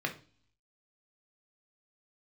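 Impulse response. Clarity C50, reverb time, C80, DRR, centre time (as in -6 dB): 12.5 dB, no single decay rate, 19.0 dB, 2.5 dB, 11 ms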